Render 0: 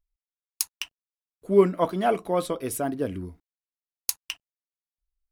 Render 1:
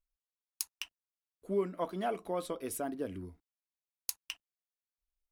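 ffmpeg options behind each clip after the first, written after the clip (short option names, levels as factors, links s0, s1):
-af "equalizer=f=130:w=3.4:g=-11,acompressor=threshold=0.0562:ratio=2,volume=0.422"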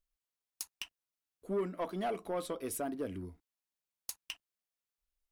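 -af "asoftclip=type=tanh:threshold=0.0376,volume=1.12"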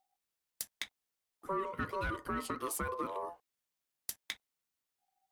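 -af "acompressor=threshold=0.0141:ratio=6,aeval=exprs='val(0)*sin(2*PI*770*n/s)':c=same,volume=2.11"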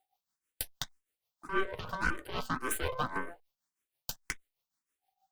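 -filter_complex "[0:a]aeval=exprs='0.0891*(cos(1*acos(clip(val(0)/0.0891,-1,1)))-cos(1*PI/2))+0.0178*(cos(8*acos(clip(val(0)/0.0891,-1,1)))-cos(8*PI/2))':c=same,tremolo=f=6.3:d=0.69,asplit=2[s0][s1];[s1]afreqshift=1.8[s2];[s0][s2]amix=inputs=2:normalize=1,volume=2.11"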